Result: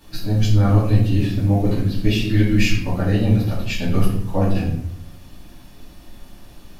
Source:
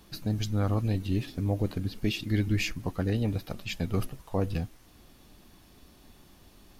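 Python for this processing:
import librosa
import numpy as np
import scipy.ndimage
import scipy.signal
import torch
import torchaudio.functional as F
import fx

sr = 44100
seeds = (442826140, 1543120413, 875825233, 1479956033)

y = fx.room_shoebox(x, sr, seeds[0], volume_m3=130.0, walls='mixed', distance_m=2.4)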